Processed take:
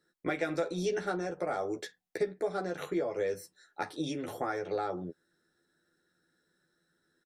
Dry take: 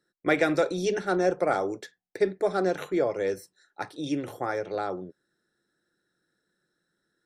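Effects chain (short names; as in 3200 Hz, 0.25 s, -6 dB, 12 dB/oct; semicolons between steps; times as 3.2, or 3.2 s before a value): compressor 6:1, threshold -31 dBFS, peak gain reduction 12.5 dB; doubler 12 ms -3.5 dB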